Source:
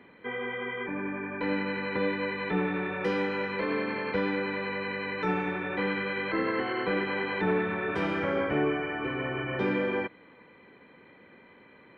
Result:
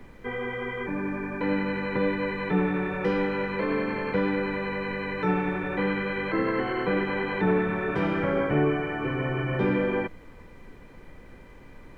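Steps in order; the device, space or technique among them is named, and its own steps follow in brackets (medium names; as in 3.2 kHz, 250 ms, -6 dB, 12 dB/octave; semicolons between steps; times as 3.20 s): car interior (peaking EQ 140 Hz +7 dB 0.66 oct; treble shelf 2.6 kHz -7 dB; brown noise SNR 20 dB); trim +3 dB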